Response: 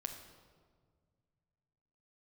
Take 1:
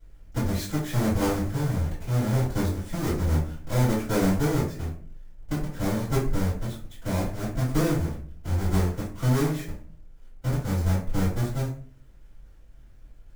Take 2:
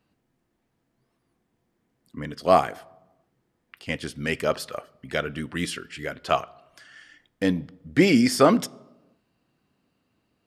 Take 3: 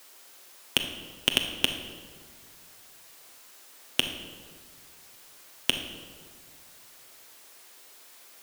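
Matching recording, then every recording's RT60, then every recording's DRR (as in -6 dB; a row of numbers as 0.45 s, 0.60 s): 3; 0.45 s, 1.1 s, 1.8 s; -9.5 dB, 19.5 dB, 4.0 dB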